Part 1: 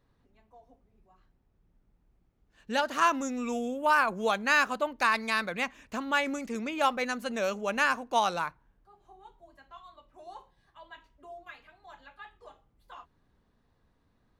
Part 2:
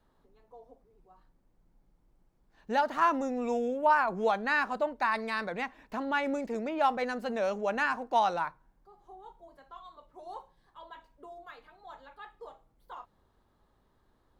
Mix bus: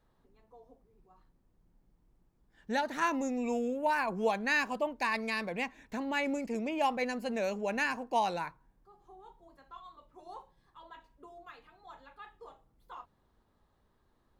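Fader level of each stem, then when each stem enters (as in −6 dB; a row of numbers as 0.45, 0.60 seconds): −7.5, −3.5 decibels; 0.00, 0.00 seconds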